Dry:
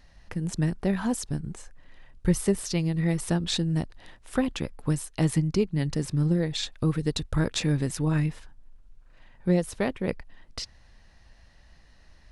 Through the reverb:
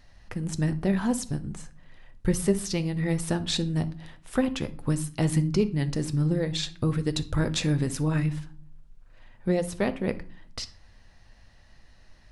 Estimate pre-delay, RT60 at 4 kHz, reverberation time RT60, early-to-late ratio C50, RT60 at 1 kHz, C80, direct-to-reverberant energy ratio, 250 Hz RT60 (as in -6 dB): 8 ms, 0.30 s, 0.40 s, 16.5 dB, 0.40 s, 22.0 dB, 9.5 dB, 0.75 s